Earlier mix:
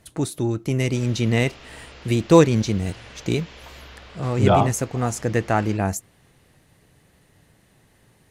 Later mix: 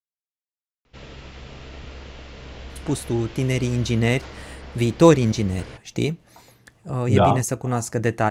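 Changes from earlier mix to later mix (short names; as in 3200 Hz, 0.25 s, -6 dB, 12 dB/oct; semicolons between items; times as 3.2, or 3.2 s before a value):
speech: entry +2.70 s; background: add low shelf 430 Hz +9.5 dB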